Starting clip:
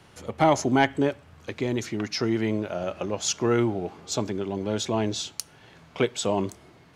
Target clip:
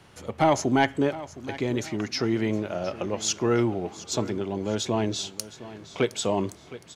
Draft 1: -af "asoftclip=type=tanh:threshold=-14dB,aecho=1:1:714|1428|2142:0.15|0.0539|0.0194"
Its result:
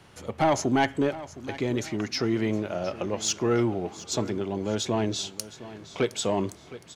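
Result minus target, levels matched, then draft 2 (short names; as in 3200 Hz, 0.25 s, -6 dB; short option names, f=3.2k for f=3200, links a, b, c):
soft clip: distortion +9 dB
-af "asoftclip=type=tanh:threshold=-7.5dB,aecho=1:1:714|1428|2142:0.15|0.0539|0.0194"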